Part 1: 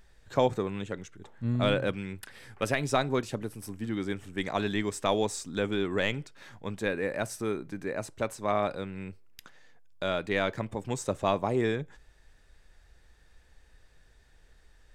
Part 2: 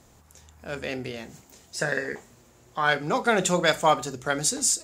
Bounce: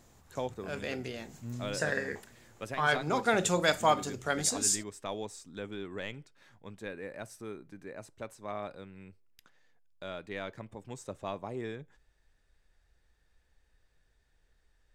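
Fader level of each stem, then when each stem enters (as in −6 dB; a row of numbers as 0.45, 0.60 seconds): −11.0, −5.0 decibels; 0.00, 0.00 seconds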